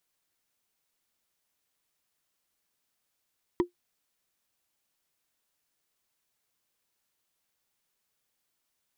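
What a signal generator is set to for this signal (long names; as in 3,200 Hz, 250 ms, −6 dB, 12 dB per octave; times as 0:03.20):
struck wood, lowest mode 352 Hz, decay 0.12 s, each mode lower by 7 dB, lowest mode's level −16.5 dB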